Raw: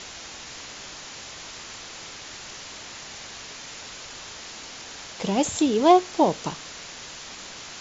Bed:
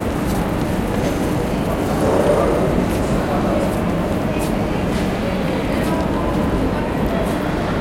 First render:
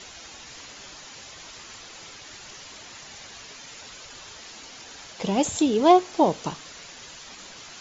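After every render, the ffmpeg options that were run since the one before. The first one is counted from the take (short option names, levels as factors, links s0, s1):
-af "afftdn=nr=7:nf=-41"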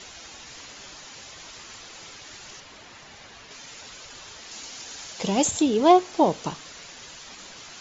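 -filter_complex "[0:a]asettb=1/sr,asplit=3[s0][s1][s2];[s0]atrim=end=2.604[s3];[s1]atrim=start=2.6:end=3.51,asetpts=PTS-STARTPTS,afade=t=in:d=0.004:c=qsin,afade=t=out:st=0.906:d=0.004:c=qsin,lowpass=f=2900:p=1[s4];[s2]atrim=start=3.506[s5];[s3][s4]acrossfade=d=0.004:c1=hsin:c2=qsin[s6];[s6][s5]acrossfade=d=0.004:c1=qsin:c2=hsin,asettb=1/sr,asplit=3[s7][s8][s9];[s7]atrim=end=4.514[s10];[s8]atrim=start=4.51:end=5.51,asetpts=PTS-STARTPTS,afade=t=in:d=0.004:c=qsin,afade=t=out:st=0.996:d=0.004:c=qsin,highshelf=f=4800:g=9[s11];[s9]atrim=start=5.506[s12];[s10][s11]acrossfade=d=0.004:c1=hsin:c2=qsin[s13];[s13][s12]acrossfade=d=0.004:c1=qsin:c2=hsin"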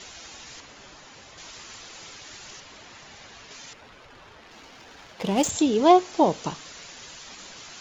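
-filter_complex "[0:a]asettb=1/sr,asplit=3[s0][s1][s2];[s0]atrim=end=0.604[s3];[s1]atrim=start=0.6:end=1.38,asetpts=PTS-STARTPTS,afade=t=in:d=0.004:c=qsin,afade=t=out:st=0.776:d=0.004:c=qsin,highshelf=f=2800:g=-9[s4];[s2]atrim=start=1.376[s5];[s3][s4]acrossfade=d=0.004:c1=hsin:c2=qsin[s6];[s6][s5]acrossfade=d=0.004:c1=qsin:c2=hsin,asettb=1/sr,asplit=3[s7][s8][s9];[s7]atrim=end=3.734[s10];[s8]atrim=start=3.73:end=5.5,asetpts=PTS-STARTPTS,afade=t=in:d=0.004:c=qsin,afade=t=out:st=1.766:d=0.004:c=qsin,adynamicsmooth=sensitivity=4:basefreq=1800[s11];[s9]atrim=start=5.496[s12];[s10][s11]acrossfade=d=0.004:c1=hsin:c2=qsin[s13];[s13][s12]acrossfade=d=0.004:c1=qsin:c2=hsin"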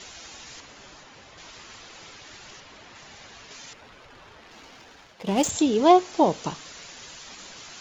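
-filter_complex "[0:a]asettb=1/sr,asplit=3[s0][s1][s2];[s0]atrim=end=1.034[s3];[s1]atrim=start=1.03:end=2.96,asetpts=PTS-STARTPTS,afade=t=in:d=0.004:c=qsin,afade=t=out:st=1.926:d=0.004:c=qsin,highshelf=f=7100:g=-11[s4];[s2]atrim=start=2.956[s5];[s3][s4]acrossfade=d=0.004:c1=hsin:c2=qsin[s6];[s6][s5]acrossfade=d=0.004:c1=qsin:c2=hsin,asplit=2[s7][s8];[s7]atrim=end=5.27,asetpts=PTS-STARTPTS,afade=t=out:st=4.73:d=0.54:silence=0.354813[s9];[s8]atrim=start=5.27,asetpts=PTS-STARTPTS,afade=t=in:d=0.004:c=hsin:silence=0.354813[s10];[s9][s10]concat=n=2:v=0:a=1"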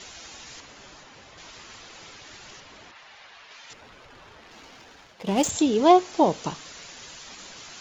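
-filter_complex "[0:a]asettb=1/sr,asplit=3[s0][s1][s2];[s0]atrim=end=2.914[s3];[s1]atrim=start=2.91:end=3.7,asetpts=PTS-STARTPTS,afade=t=in:d=0.004:c=qsin,afade=t=out:st=0.786:d=0.004:c=qsin,acrossover=split=590 4600:gain=0.178 1 0.141[s4][s5][s6];[s4][s5][s6]amix=inputs=3:normalize=0[s7];[s2]atrim=start=3.696[s8];[s3][s7]acrossfade=d=0.004:c1=hsin:c2=qsin[s9];[s9][s8]acrossfade=d=0.004:c1=qsin:c2=hsin"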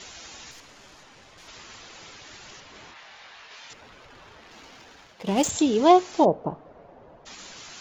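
-filter_complex "[0:a]asettb=1/sr,asplit=3[s0][s1][s2];[s0]atrim=end=0.514[s3];[s1]atrim=start=0.51:end=1.48,asetpts=PTS-STARTPTS,afade=t=in:d=0.004:c=qsin,afade=t=out:st=0.966:d=0.004:c=qsin,aeval=exprs='(tanh(112*val(0)+0.55)-tanh(0.55))/112':c=same[s4];[s2]atrim=start=1.476[s5];[s3][s4]acrossfade=d=0.004:c1=hsin:c2=qsin[s6];[s6][s5]acrossfade=d=0.004:c1=qsin:c2=hsin,asettb=1/sr,asplit=3[s7][s8][s9];[s7]atrim=end=2.724[s10];[s8]atrim=start=2.72:end=3.68,asetpts=PTS-STARTPTS,afade=t=in:d=0.004:c=qsin,afade=t=out:st=0.956:d=0.004:c=qsin,asplit=2[s11][s12];[s12]adelay=24,volume=0.668[s13];[s11][s13]amix=inputs=2:normalize=0,atrim=end_sample=42336[s14];[s9]atrim=start=3.676[s15];[s10][s14]acrossfade=d=0.004:c1=hsin:c2=qsin[s16];[s16][s15]acrossfade=d=0.004:c1=qsin:c2=hsin,asplit=3[s17][s18][s19];[s17]afade=t=out:st=6.24:d=0.02[s20];[s18]lowpass=f=660:t=q:w=1.9,afade=t=in:st=6.24:d=0.02,afade=t=out:st=7.25:d=0.02[s21];[s19]afade=t=in:st=7.25:d=0.02[s22];[s20][s21][s22]amix=inputs=3:normalize=0"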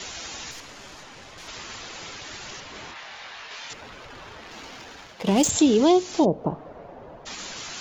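-filter_complex "[0:a]acrossover=split=410|3000[s0][s1][s2];[s1]acompressor=threshold=0.0355:ratio=6[s3];[s0][s3][s2]amix=inputs=3:normalize=0,asplit=2[s4][s5];[s5]alimiter=limit=0.1:level=0:latency=1:release=149,volume=1.19[s6];[s4][s6]amix=inputs=2:normalize=0"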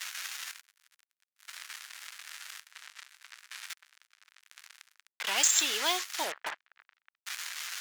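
-af "acrusher=bits=4:mix=0:aa=0.5,highpass=f=1600:t=q:w=1.8"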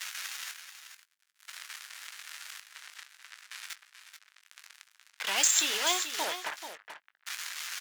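-filter_complex "[0:a]asplit=2[s0][s1];[s1]adelay=20,volume=0.224[s2];[s0][s2]amix=inputs=2:normalize=0,aecho=1:1:434:0.316"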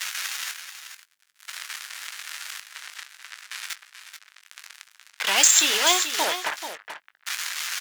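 -af "volume=2.66,alimiter=limit=0.708:level=0:latency=1"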